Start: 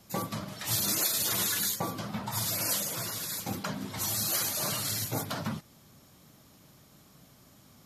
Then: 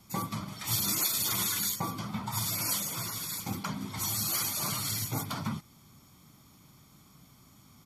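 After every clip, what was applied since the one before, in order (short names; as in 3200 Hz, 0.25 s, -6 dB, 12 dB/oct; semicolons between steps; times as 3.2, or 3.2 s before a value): comb 0.9 ms, depth 52%; gain -2 dB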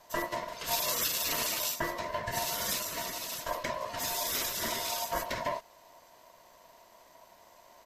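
bell 10000 Hz -11 dB 0.44 oct; ring modulator 810 Hz; gain +3.5 dB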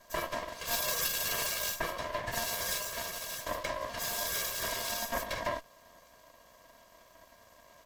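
minimum comb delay 1.8 ms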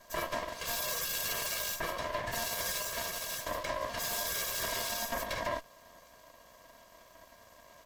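limiter -25 dBFS, peak gain reduction 9 dB; gain +1.5 dB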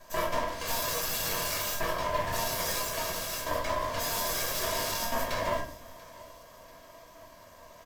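in parallel at -11 dB: sample-rate reducer 4200 Hz; on the sum: feedback echo 0.688 s, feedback 43%, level -21.5 dB; shoebox room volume 57 m³, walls mixed, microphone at 0.66 m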